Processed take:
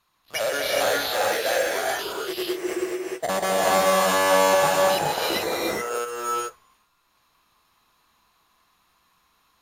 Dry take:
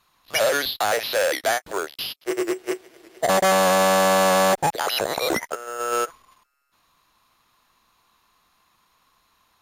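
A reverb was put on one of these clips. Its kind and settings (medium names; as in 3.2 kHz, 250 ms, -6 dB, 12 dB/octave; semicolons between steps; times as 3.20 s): gated-style reverb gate 460 ms rising, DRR -4 dB; trim -6 dB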